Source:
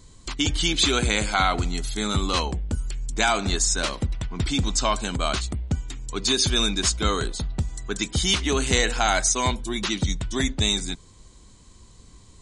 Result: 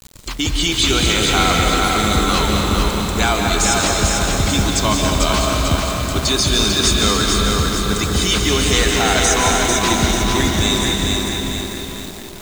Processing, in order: in parallel at +2 dB: peak limiter -14.5 dBFS, peak gain reduction 8.5 dB; on the sum: bit crusher 6-bit; tape echo 525 ms, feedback 75%, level -6 dB, low-pass 1.3 kHz; algorithmic reverb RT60 2.6 s, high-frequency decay 0.9×, pre-delay 110 ms, DRR 0.5 dB; bit-crushed delay 445 ms, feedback 55%, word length 5-bit, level -3 dB; trim -2 dB

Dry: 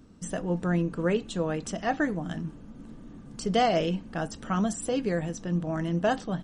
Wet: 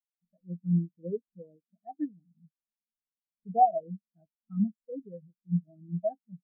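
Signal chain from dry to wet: spectral contrast expander 4:1

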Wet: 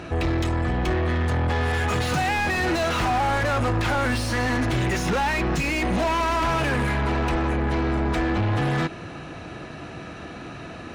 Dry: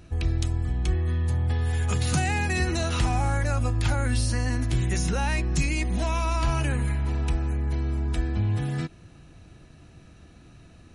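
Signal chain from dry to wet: treble shelf 4.8 kHz -5 dB; overdrive pedal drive 34 dB, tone 1.6 kHz, clips at -11.5 dBFS; trim -3 dB

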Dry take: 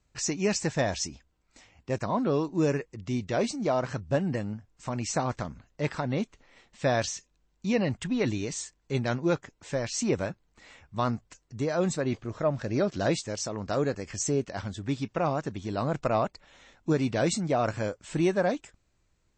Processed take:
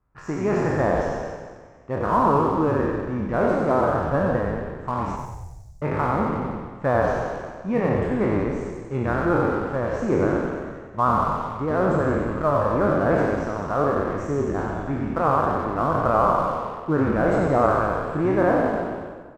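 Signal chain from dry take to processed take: spectral sustain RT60 1.86 s; FFT filter 630 Hz 0 dB, 1.2 kHz +8 dB, 3.8 kHz -25 dB; in parallel at -3.5 dB: crossover distortion -37.5 dBFS; 5.16–5.82 s: on the sum: inverse Chebyshev band-stop 250–2700 Hz, stop band 50 dB; frequency-shifting echo 92 ms, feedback 52%, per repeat -43 Hz, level -5 dB; trim -3 dB

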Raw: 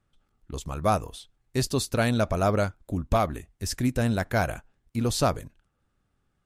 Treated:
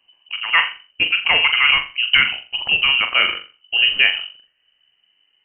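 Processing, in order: gliding tape speed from 164% -> 73%; flutter echo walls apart 7.3 m, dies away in 0.33 s; frequency inversion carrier 3 kHz; trim +7.5 dB

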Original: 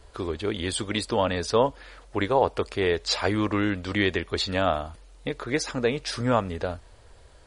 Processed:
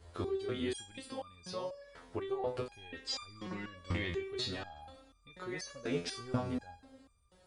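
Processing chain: high-pass 68 Hz; bass shelf 350 Hz +7 dB; 0.98–2.28 s: compression 2:1, threshold -31 dBFS, peak gain reduction 10 dB; peak limiter -16.5 dBFS, peak gain reduction 10.5 dB; plate-style reverb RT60 1.5 s, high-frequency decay 1×, pre-delay 100 ms, DRR 15 dB; resonator arpeggio 4.1 Hz 86–1200 Hz; trim +2.5 dB

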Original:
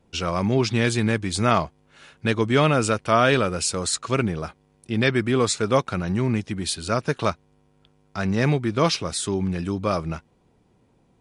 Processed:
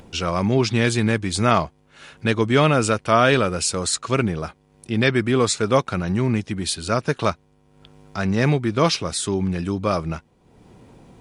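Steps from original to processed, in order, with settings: upward compressor, threshold -37 dBFS; trim +2 dB

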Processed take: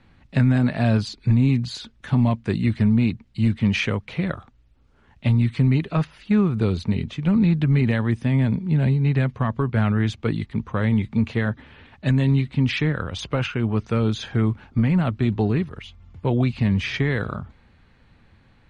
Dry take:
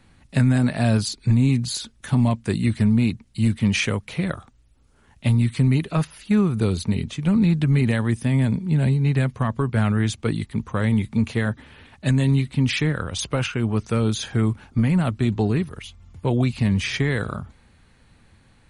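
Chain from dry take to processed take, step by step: low-pass 3.8 kHz 12 dB/octave

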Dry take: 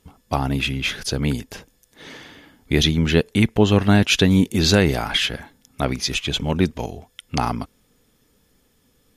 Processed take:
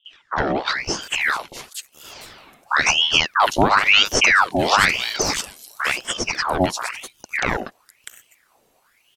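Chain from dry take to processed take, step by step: three bands offset in time lows, mids, highs 50/700 ms, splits 450/5200 Hz; ring modulator with a swept carrier 1.8 kHz, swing 75%, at 0.98 Hz; trim +3.5 dB

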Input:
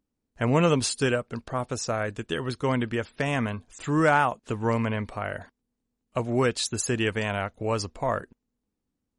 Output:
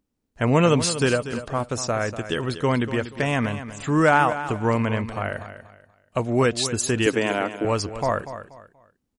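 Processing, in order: 7.06–7.65 s: resonant high-pass 290 Hz, resonance Q 3.6; feedback delay 240 ms, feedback 29%, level -12 dB; trim +3.5 dB

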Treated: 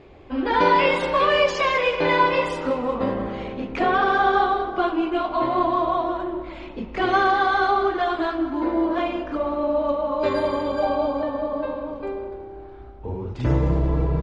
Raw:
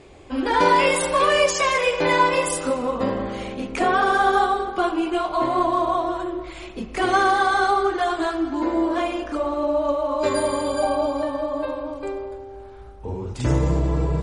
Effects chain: distance through air 220 m; on a send: frequency-shifting echo 184 ms, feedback 61%, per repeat -33 Hz, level -17 dB; on the sum: dynamic bell 3.8 kHz, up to +4 dB, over -37 dBFS, Q 0.94

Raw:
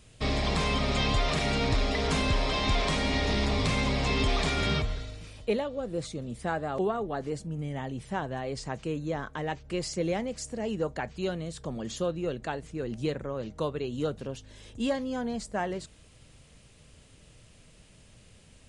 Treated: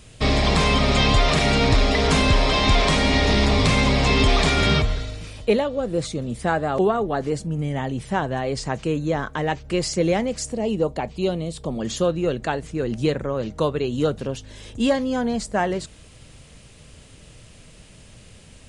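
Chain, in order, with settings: 10.52–11.81 s: fifteen-band graphic EQ 100 Hz -6 dB, 1.6 kHz -12 dB, 6.3 kHz -6 dB; trim +9 dB

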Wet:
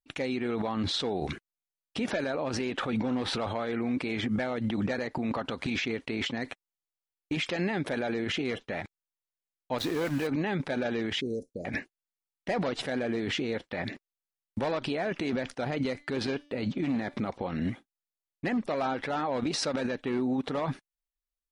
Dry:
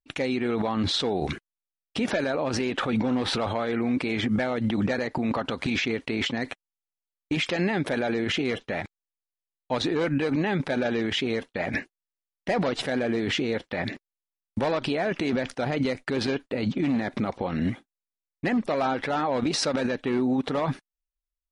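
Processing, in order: 9.78–10.27 s: small samples zeroed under -32 dBFS; 11.21–11.65 s: elliptic band-stop 520–5900 Hz, stop band 40 dB; 15.87–17.19 s: de-hum 291 Hz, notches 30; trim -4.5 dB

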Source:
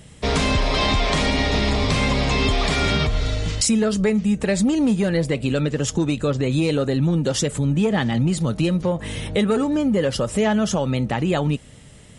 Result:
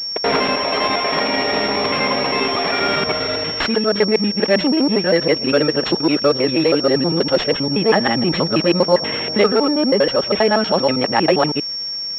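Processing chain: time reversed locally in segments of 80 ms; high-pass 350 Hz 12 dB/octave; gain riding 0.5 s; crossover distortion -54.5 dBFS; class-D stage that switches slowly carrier 5.5 kHz; trim +8 dB

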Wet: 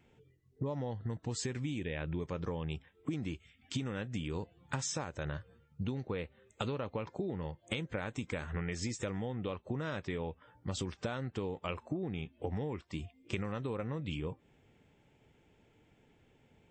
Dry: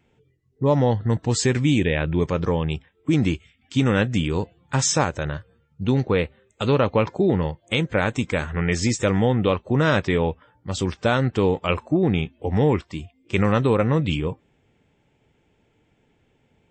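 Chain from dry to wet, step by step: compression 16:1, threshold -31 dBFS, peak gain reduction 18 dB; trim -2.5 dB

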